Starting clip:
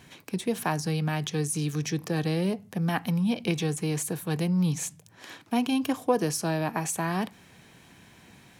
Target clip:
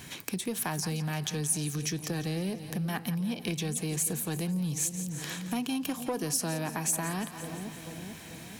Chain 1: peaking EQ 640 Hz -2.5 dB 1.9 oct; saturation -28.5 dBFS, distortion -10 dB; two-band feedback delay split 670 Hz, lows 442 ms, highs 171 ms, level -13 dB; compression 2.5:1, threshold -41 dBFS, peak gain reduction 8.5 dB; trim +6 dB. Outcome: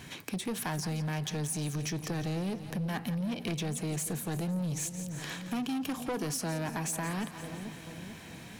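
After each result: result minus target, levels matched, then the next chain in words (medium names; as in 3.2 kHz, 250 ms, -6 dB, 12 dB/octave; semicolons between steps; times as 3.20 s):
saturation: distortion +12 dB; 8 kHz band -3.5 dB
peaking EQ 640 Hz -2.5 dB 1.9 oct; saturation -18.5 dBFS, distortion -22 dB; two-band feedback delay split 670 Hz, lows 442 ms, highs 171 ms, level -13 dB; compression 2.5:1, threshold -41 dBFS, peak gain reduction 12 dB; trim +6 dB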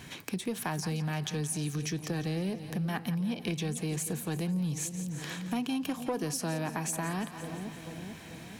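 8 kHz band -4.0 dB
peaking EQ 640 Hz -2.5 dB 1.9 oct; saturation -18.5 dBFS, distortion -22 dB; two-band feedback delay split 670 Hz, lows 442 ms, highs 171 ms, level -13 dB; compression 2.5:1, threshold -41 dBFS, peak gain reduction 12 dB; treble shelf 5.9 kHz +9 dB; trim +6 dB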